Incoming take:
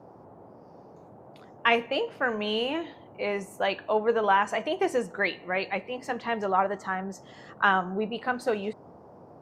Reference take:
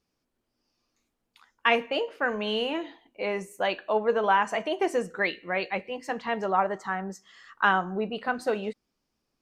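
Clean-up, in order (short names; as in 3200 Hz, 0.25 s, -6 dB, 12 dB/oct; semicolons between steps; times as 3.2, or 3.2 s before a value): noise print and reduce 29 dB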